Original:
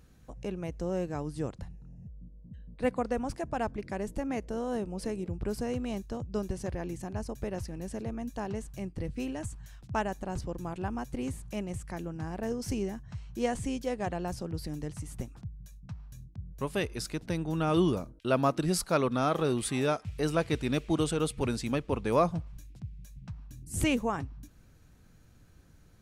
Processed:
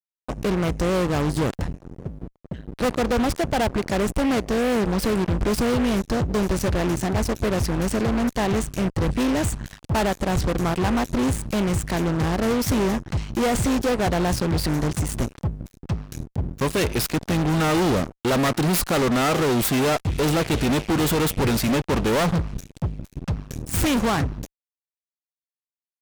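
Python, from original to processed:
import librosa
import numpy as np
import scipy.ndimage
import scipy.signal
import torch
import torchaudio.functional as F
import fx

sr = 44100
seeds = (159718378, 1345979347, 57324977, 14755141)

y = fx.self_delay(x, sr, depth_ms=0.31)
y = fx.fuzz(y, sr, gain_db=41.0, gate_db=-45.0)
y = F.gain(torch.from_numpy(y), -5.0).numpy()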